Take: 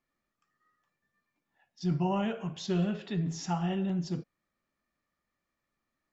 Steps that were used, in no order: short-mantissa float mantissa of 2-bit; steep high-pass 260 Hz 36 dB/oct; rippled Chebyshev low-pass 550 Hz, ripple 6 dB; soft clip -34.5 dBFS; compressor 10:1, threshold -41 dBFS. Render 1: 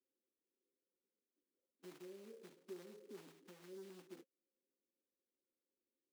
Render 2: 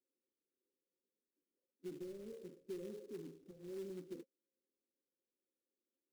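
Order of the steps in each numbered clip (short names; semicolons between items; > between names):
compressor > soft clip > rippled Chebyshev low-pass > short-mantissa float > steep high-pass; steep high-pass > soft clip > compressor > rippled Chebyshev low-pass > short-mantissa float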